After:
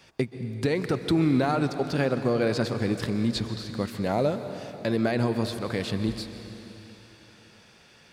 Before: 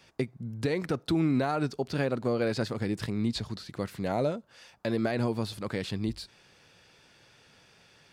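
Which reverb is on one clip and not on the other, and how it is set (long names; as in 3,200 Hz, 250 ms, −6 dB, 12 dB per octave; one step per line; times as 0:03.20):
dense smooth reverb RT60 3.4 s, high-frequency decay 1×, pre-delay 115 ms, DRR 9 dB
level +3.5 dB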